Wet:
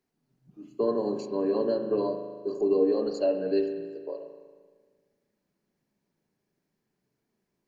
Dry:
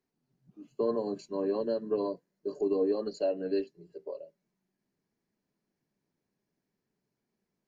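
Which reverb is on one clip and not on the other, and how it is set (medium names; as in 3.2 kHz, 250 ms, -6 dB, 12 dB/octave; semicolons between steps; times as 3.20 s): spring tank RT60 1.6 s, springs 38 ms, chirp 30 ms, DRR 5.5 dB; trim +3 dB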